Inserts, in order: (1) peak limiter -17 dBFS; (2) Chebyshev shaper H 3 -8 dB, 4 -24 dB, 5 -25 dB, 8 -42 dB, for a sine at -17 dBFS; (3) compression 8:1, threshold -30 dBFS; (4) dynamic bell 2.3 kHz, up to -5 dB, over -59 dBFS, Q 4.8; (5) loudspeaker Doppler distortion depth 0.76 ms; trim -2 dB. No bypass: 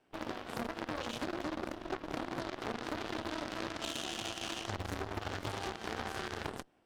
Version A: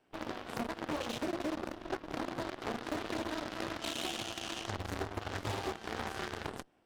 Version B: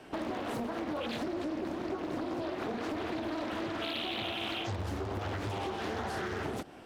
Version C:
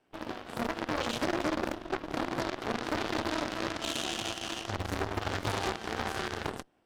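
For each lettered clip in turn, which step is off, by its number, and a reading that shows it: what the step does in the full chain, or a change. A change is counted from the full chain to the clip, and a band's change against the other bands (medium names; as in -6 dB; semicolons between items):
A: 1, momentary loudness spread change +2 LU; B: 2, crest factor change -10.5 dB; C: 3, mean gain reduction 5.0 dB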